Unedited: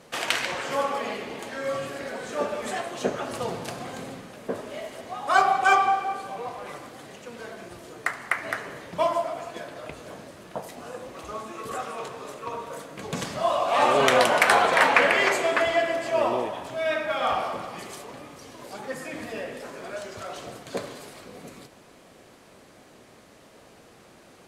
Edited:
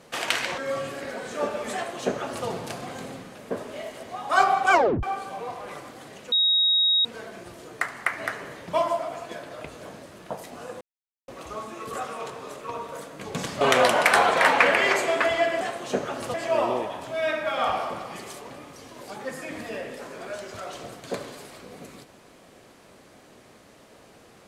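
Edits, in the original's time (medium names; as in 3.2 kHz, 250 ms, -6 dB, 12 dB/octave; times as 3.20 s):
0.58–1.56 s: delete
2.72–3.45 s: copy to 15.97 s
5.70 s: tape stop 0.31 s
7.30 s: add tone 3.78 kHz -17.5 dBFS 0.73 s
11.06 s: insert silence 0.47 s
13.39–13.97 s: delete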